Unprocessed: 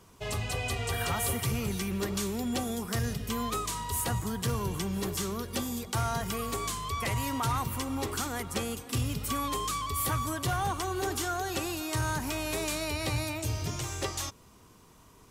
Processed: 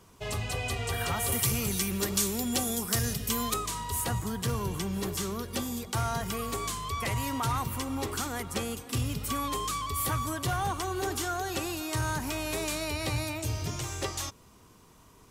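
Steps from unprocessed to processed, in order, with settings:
0:01.32–0:03.54: high-shelf EQ 4,300 Hz +11.5 dB

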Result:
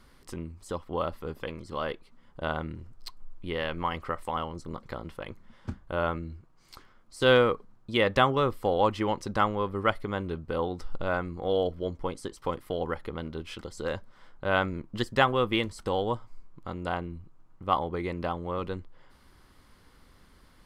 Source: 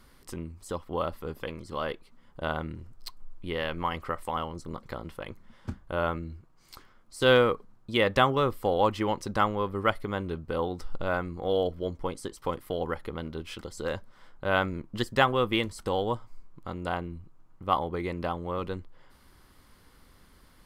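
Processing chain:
high-shelf EQ 12,000 Hz −10.5 dB

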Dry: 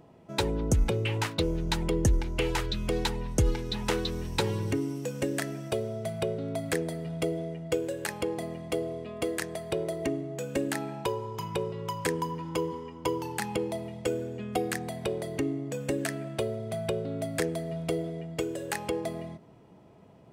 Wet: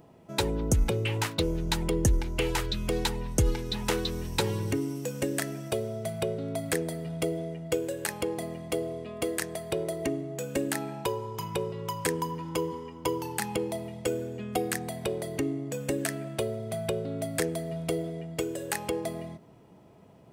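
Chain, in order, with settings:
high-shelf EQ 8,800 Hz +8.5 dB

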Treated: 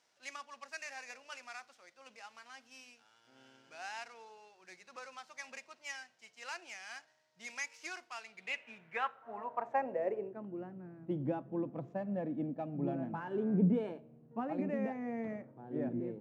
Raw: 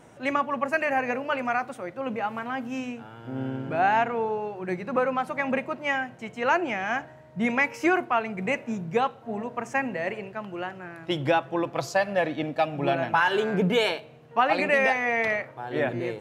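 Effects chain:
running median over 9 samples
band-pass filter sweep 5,300 Hz → 220 Hz, 0:08.16–0:10.66
MP3 80 kbit/s 44,100 Hz

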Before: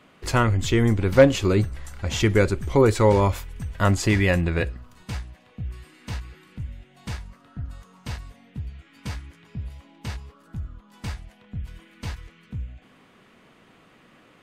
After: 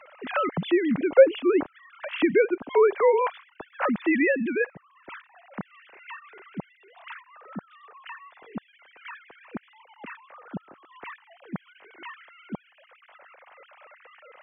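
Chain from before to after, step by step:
three sine waves on the formant tracks
multiband upward and downward compressor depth 40%

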